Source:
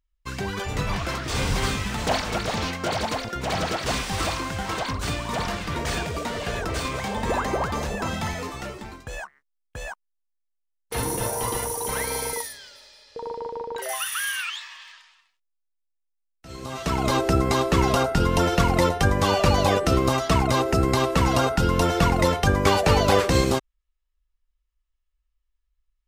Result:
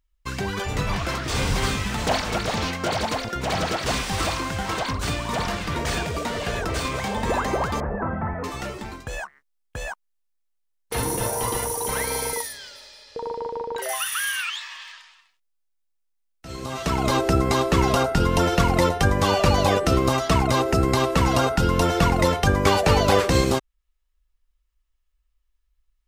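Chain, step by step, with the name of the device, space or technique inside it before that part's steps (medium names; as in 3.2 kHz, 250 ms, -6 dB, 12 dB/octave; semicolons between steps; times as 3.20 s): 7.80–8.44 s: steep low-pass 1.7 kHz 36 dB/octave; parallel compression (in parallel at -3.5 dB: compression, threshold -36 dBFS, peak gain reduction 20 dB)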